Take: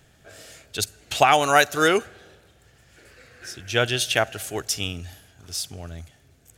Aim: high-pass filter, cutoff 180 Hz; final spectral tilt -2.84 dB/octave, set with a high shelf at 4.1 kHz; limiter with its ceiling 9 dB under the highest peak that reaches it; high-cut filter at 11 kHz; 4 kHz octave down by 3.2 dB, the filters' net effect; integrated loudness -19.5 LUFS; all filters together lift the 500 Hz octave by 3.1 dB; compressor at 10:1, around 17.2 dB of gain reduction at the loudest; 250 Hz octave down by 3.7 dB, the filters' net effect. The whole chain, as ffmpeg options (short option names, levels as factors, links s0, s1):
-af "highpass=180,lowpass=11000,equalizer=f=250:t=o:g=-8.5,equalizer=f=500:t=o:g=6,equalizer=f=4000:t=o:g=-7,highshelf=f=4100:g=4.5,acompressor=threshold=0.0398:ratio=10,volume=7.08,alimiter=limit=0.473:level=0:latency=1"